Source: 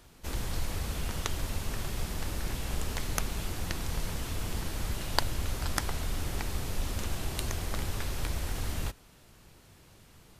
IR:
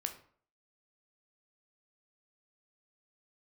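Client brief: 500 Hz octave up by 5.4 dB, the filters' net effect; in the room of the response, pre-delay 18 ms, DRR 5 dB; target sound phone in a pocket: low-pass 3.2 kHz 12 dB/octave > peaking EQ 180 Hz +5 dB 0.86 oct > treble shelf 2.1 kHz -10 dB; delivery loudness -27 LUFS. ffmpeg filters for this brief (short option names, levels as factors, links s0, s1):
-filter_complex "[0:a]equalizer=f=500:t=o:g=7,asplit=2[s0][s1];[1:a]atrim=start_sample=2205,adelay=18[s2];[s1][s2]afir=irnorm=-1:irlink=0,volume=0.562[s3];[s0][s3]amix=inputs=2:normalize=0,lowpass=3200,equalizer=f=180:t=o:w=0.86:g=5,highshelf=f=2100:g=-10,volume=2.37"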